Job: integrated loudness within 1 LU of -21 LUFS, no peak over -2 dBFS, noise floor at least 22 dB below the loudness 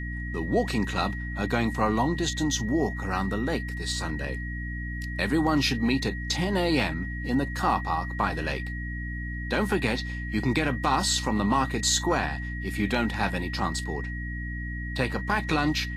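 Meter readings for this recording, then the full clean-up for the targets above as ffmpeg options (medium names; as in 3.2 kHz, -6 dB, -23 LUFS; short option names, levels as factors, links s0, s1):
hum 60 Hz; highest harmonic 300 Hz; hum level -31 dBFS; steady tone 1.9 kHz; tone level -37 dBFS; loudness -27.5 LUFS; peak level -10.0 dBFS; loudness target -21.0 LUFS
-> -af "bandreject=f=60:t=h:w=6,bandreject=f=120:t=h:w=6,bandreject=f=180:t=h:w=6,bandreject=f=240:t=h:w=6,bandreject=f=300:t=h:w=6"
-af "bandreject=f=1900:w=30"
-af "volume=2.11"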